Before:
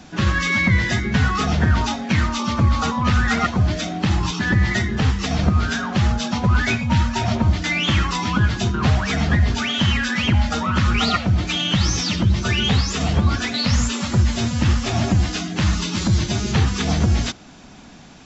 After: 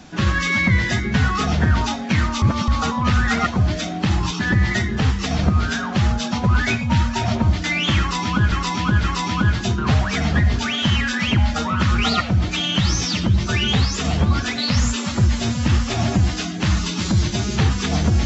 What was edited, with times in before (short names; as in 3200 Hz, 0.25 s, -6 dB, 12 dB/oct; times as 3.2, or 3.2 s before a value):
2.42–2.68 reverse
8–8.52 loop, 3 plays